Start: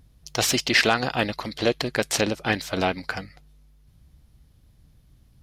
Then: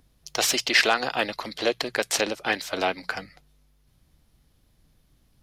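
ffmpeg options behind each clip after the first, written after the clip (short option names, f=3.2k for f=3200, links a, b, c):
-filter_complex "[0:a]equalizer=f=78:t=o:w=2.5:g=-9.5,bandreject=f=60:t=h:w=6,bandreject=f=120:t=h:w=6,bandreject=f=180:t=h:w=6,acrossover=split=300[a][b];[a]alimiter=level_in=10dB:limit=-24dB:level=0:latency=1:release=357,volume=-10dB[c];[c][b]amix=inputs=2:normalize=0"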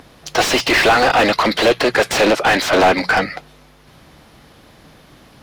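-filter_complex "[0:a]asplit=2[a][b];[b]highpass=f=720:p=1,volume=34dB,asoftclip=type=tanh:threshold=-6dB[c];[a][c]amix=inputs=2:normalize=0,lowpass=f=1.3k:p=1,volume=-6dB,volume=3.5dB"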